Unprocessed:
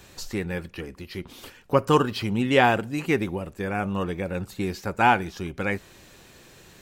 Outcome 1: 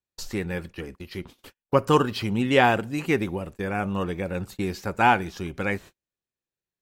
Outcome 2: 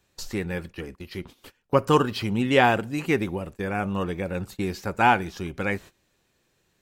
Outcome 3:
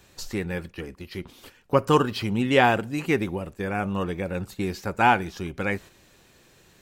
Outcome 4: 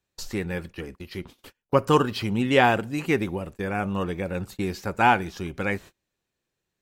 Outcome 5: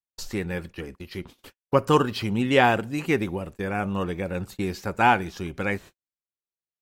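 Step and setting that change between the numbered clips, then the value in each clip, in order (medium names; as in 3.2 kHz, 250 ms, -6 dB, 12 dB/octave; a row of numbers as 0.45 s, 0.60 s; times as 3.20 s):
gate, range: -45 dB, -19 dB, -6 dB, -32 dB, -58 dB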